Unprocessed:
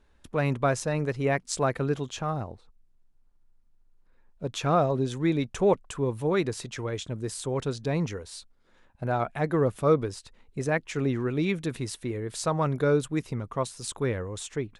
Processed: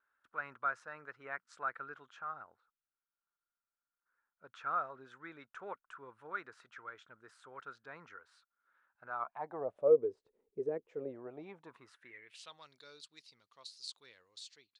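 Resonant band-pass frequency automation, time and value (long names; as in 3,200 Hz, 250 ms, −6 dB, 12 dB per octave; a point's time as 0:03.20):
resonant band-pass, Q 6.6
0:09.04 1,400 Hz
0:10.07 420 Hz
0:10.77 420 Hz
0:11.71 1,000 Hz
0:12.67 4,400 Hz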